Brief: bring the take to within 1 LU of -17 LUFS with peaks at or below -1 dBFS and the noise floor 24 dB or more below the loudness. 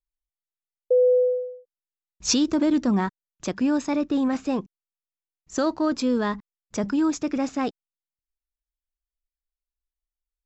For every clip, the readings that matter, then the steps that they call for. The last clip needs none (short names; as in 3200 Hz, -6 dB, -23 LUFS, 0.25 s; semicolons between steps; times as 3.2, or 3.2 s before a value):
loudness -24.0 LUFS; peak -10.5 dBFS; loudness target -17.0 LUFS
-> gain +7 dB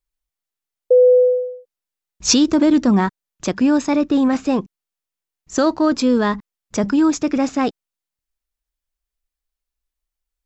loudness -17.0 LUFS; peak -3.5 dBFS; noise floor -87 dBFS